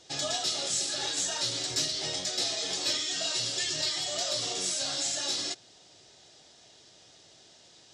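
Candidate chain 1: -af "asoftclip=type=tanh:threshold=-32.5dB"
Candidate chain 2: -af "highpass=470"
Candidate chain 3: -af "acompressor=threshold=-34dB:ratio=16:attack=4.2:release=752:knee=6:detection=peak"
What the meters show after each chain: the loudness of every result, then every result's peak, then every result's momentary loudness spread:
-33.5, -29.0, -38.0 LUFS; -32.5, -17.0, -27.0 dBFS; 1, 2, 17 LU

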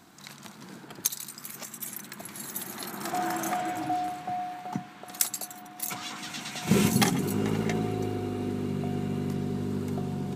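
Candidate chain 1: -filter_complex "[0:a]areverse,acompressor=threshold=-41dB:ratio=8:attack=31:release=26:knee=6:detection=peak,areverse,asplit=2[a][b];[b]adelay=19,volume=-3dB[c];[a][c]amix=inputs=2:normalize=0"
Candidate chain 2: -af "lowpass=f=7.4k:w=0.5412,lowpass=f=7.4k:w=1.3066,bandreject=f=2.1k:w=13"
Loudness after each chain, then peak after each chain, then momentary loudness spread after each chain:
-37.0, -31.0 LUFS; -20.0, -9.5 dBFS; 5, 17 LU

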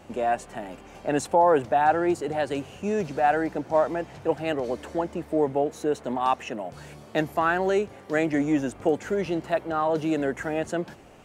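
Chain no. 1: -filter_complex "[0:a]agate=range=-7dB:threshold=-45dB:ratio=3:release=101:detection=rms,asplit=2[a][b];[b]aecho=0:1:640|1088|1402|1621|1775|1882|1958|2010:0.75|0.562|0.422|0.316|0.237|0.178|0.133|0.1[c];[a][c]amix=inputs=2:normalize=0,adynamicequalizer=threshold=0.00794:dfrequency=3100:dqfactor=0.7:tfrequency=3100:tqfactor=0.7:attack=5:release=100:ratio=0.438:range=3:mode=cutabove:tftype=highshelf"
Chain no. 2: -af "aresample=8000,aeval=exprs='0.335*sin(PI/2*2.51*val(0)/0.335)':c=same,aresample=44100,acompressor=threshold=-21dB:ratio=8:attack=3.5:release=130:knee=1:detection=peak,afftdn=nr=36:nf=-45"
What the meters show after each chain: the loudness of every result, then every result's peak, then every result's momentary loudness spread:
-23.0, -25.5 LUFS; -7.5, -11.0 dBFS; 6, 5 LU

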